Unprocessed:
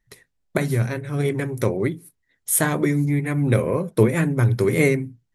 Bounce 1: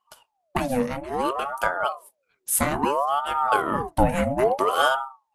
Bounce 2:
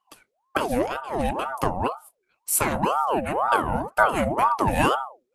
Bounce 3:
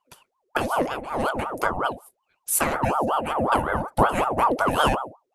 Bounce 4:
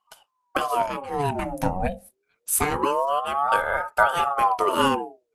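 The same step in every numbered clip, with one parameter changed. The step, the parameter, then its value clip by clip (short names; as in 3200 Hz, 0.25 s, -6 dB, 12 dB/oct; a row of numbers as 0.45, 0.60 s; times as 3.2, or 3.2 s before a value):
ring modulator with a swept carrier, at: 0.6, 2, 5.4, 0.26 Hz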